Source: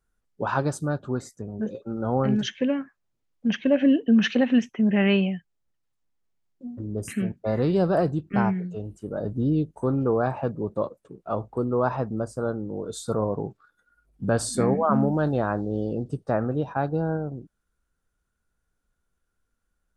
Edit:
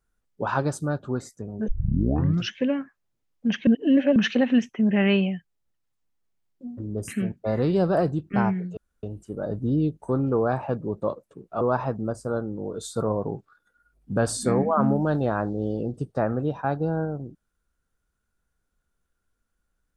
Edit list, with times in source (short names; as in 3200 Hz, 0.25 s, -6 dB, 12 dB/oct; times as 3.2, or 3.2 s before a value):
1.68 tape start 0.85 s
3.67–4.16 reverse
8.77 insert room tone 0.26 s
11.35–11.73 cut